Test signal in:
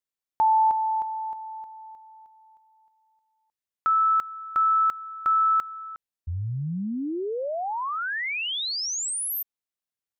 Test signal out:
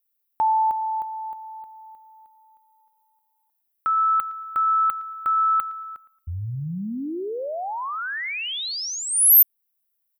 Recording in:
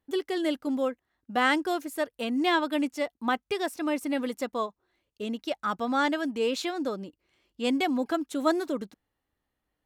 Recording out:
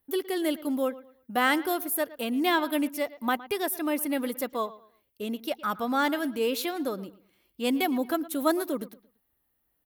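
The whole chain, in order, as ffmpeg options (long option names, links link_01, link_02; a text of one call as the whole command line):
ffmpeg -i in.wav -filter_complex "[0:a]acrossover=split=5200[link_01][link_02];[link_01]aecho=1:1:113|226|339:0.126|0.0365|0.0106[link_03];[link_02]aexciter=amount=7.2:drive=6.4:freq=10000[link_04];[link_03][link_04]amix=inputs=2:normalize=0" out.wav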